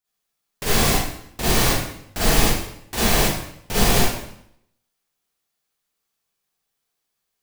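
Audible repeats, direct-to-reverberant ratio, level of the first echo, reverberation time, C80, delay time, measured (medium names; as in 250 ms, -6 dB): no echo, -10.0 dB, no echo, 0.70 s, 2.0 dB, no echo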